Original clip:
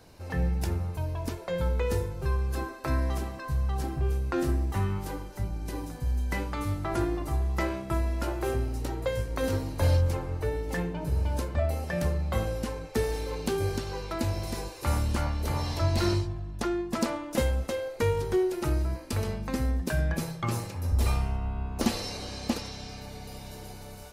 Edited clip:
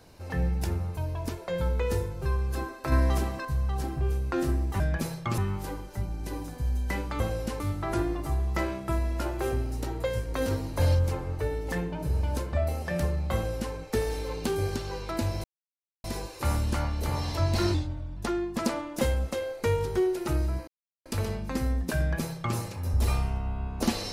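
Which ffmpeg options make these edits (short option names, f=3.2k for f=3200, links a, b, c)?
-filter_complex "[0:a]asplit=11[a][b][c][d][e][f][g][h][i][j][k];[a]atrim=end=2.922[l];[b]atrim=start=2.918:end=3.452,asetpts=PTS-STARTPTS,volume=4.5dB[m];[c]atrim=start=3.448:end=4.802[n];[d]atrim=start=19.968:end=20.552[o];[e]atrim=start=4.798:end=6.622[p];[f]atrim=start=12.358:end=12.762[q];[g]atrim=start=6.618:end=14.46,asetpts=PTS-STARTPTS,afade=t=out:st=7.838:d=0.004:c=hsin,apad=pad_dur=0.6[r];[h]atrim=start=14.46:end=16.164,asetpts=PTS-STARTPTS,afade=t=in:d=0.004:c=hsin[s];[i]atrim=start=16.16:end=16.53,asetpts=PTS-STARTPTS,asetrate=38367,aresample=44100,atrim=end_sample=18755,asetpts=PTS-STARTPTS[t];[j]atrim=start=16.526:end=19.04,asetpts=PTS-STARTPTS,afade=t=out:st=2.51:d=0.004:c=hsin,apad=pad_dur=0.38[u];[k]atrim=start=19.04,asetpts=PTS-STARTPTS,afade=t=in:d=0.004:c=hsin[v];[l][m]acrossfade=d=0.004:c1=hsin:c2=hsin[w];[w][n]acrossfade=d=0.004:c1=hsin:c2=hsin[x];[x][o]acrossfade=d=0.004:c1=hsin:c2=hsin[y];[y][p]acrossfade=d=0.004:c1=hsin:c2=hsin[z];[z][q]acrossfade=d=0.004:c1=hsin:c2=hsin[aa];[r][s]concat=n=2:v=0:a=1[ab];[aa][ab]acrossfade=d=0.004:c1=hsin:c2=hsin[ac];[ac][t]acrossfade=d=0.004:c1=hsin:c2=hsin[ad];[u][v]concat=n=2:v=0:a=1[ae];[ad][ae]acrossfade=d=0.004:c1=hsin:c2=hsin"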